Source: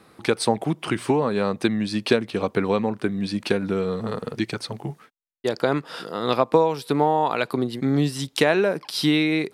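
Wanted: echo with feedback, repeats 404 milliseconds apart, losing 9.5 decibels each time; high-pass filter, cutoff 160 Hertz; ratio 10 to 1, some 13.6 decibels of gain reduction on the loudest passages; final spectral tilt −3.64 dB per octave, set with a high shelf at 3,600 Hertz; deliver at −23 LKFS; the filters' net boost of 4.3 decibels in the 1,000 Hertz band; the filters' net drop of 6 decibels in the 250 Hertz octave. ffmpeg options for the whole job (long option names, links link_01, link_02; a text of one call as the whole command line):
ffmpeg -i in.wav -af "highpass=160,equalizer=frequency=250:width_type=o:gain=-7.5,equalizer=frequency=1000:width_type=o:gain=5.5,highshelf=frequency=3600:gain=3.5,acompressor=threshold=-26dB:ratio=10,aecho=1:1:404|808|1212|1616:0.335|0.111|0.0365|0.012,volume=8dB" out.wav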